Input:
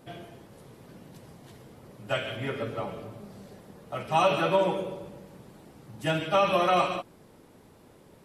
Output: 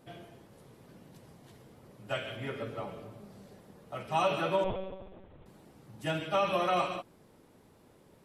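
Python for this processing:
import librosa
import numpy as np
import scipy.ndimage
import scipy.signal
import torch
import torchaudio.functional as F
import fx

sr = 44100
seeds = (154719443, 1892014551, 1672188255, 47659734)

y = fx.lpc_monotone(x, sr, seeds[0], pitch_hz=190.0, order=10, at=(4.64, 5.46))
y = y * 10.0 ** (-5.5 / 20.0)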